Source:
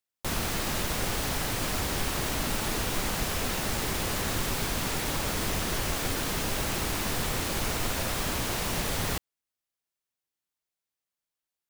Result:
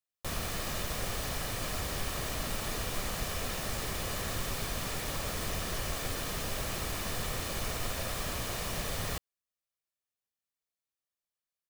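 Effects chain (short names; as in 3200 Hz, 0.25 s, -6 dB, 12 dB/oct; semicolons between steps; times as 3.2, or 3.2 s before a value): comb 1.7 ms, depth 31%; gain -6 dB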